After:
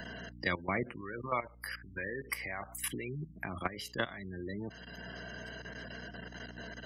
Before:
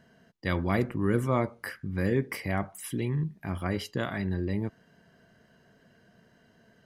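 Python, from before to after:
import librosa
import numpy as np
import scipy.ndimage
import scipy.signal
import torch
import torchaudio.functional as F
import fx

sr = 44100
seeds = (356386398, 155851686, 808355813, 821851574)

y = fx.spec_gate(x, sr, threshold_db=-25, keep='strong')
y = fx.peak_eq(y, sr, hz=180.0, db=-12.5, octaves=2.8, at=(1.01, 3.36))
y = fx.spec_repair(y, sr, seeds[0], start_s=5.29, length_s=0.49, low_hz=420.0, high_hz=2800.0, source='both')
y = fx.tilt_eq(y, sr, slope=2.5)
y = fx.level_steps(y, sr, step_db=16)
y = fx.add_hum(y, sr, base_hz=60, snr_db=22)
y = fx.band_squash(y, sr, depth_pct=70)
y = y * librosa.db_to_amplitude(5.0)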